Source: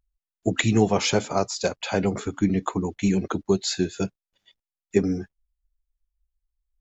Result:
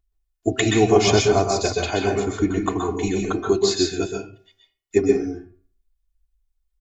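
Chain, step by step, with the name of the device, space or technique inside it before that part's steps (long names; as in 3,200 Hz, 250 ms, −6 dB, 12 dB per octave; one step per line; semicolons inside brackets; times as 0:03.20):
microphone above a desk (comb filter 2.8 ms, depth 74%; convolution reverb RT60 0.35 s, pre-delay 119 ms, DRR 1.5 dB)
hum removal 128.6 Hz, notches 25
0:01.07–0:01.91: low-shelf EQ 200 Hz +9.5 dB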